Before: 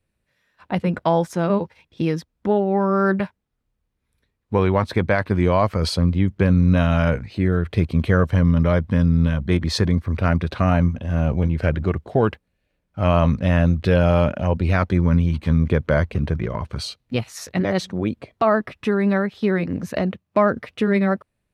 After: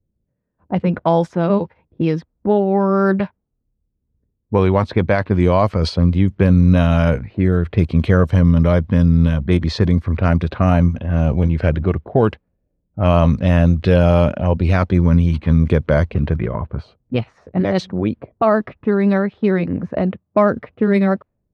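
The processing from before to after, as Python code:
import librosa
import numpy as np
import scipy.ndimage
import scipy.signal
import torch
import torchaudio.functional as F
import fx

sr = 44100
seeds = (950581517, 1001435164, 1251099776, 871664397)

y = fx.dynamic_eq(x, sr, hz=1700.0, q=0.94, threshold_db=-35.0, ratio=4.0, max_db=-4)
y = fx.env_lowpass(y, sr, base_hz=350.0, full_db=-13.5)
y = y * 10.0 ** (4.0 / 20.0)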